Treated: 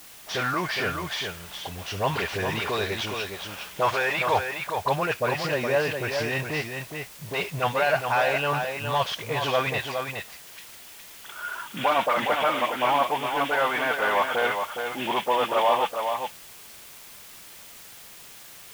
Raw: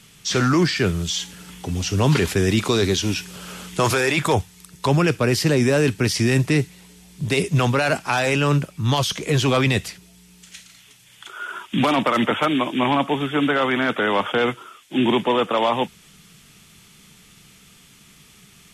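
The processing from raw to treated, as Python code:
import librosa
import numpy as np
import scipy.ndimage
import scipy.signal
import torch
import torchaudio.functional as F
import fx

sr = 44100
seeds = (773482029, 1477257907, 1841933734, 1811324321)

p1 = fx.cvsd(x, sr, bps=64000)
p2 = scipy.signal.sosfilt(scipy.signal.butter(2, 3400.0, 'lowpass', fs=sr, output='sos'), p1)
p3 = fx.low_shelf_res(p2, sr, hz=440.0, db=-11.5, q=1.5)
p4 = fx.notch(p3, sr, hz=1300.0, q=15.0)
p5 = fx.dispersion(p4, sr, late='highs', ms=40.0, hz=1000.0)
p6 = fx.quant_dither(p5, sr, seeds[0], bits=6, dither='triangular')
p7 = p5 + (p6 * librosa.db_to_amplitude(-5.0))
p8 = p7 + 10.0 ** (-6.0 / 20.0) * np.pad(p7, (int(414 * sr / 1000.0), 0))[:len(p7)]
y = p8 * librosa.db_to_amplitude(-6.0)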